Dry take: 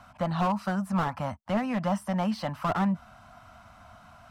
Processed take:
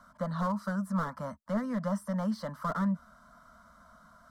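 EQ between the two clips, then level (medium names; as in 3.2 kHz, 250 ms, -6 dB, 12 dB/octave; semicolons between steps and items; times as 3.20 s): static phaser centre 520 Hz, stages 8; -2.5 dB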